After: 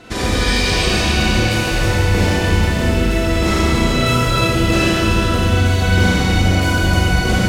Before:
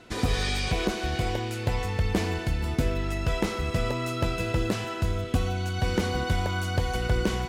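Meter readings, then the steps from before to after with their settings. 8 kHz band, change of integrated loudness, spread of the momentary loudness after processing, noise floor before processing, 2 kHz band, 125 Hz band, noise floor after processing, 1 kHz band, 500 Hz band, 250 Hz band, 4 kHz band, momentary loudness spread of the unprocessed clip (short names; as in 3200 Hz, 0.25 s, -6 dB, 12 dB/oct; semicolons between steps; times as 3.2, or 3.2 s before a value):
+14.5 dB, +12.5 dB, 2 LU, -34 dBFS, +14.5 dB, +12.0 dB, -18 dBFS, +11.5 dB, +10.5 dB, +13.0 dB, +14.5 dB, 3 LU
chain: in parallel at +2.5 dB: negative-ratio compressor -30 dBFS; on the sum: echo with dull and thin repeats by turns 0.158 s, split 1200 Hz, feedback 60%, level -11 dB; Schroeder reverb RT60 3.8 s, combs from 29 ms, DRR -8 dB; gain -1 dB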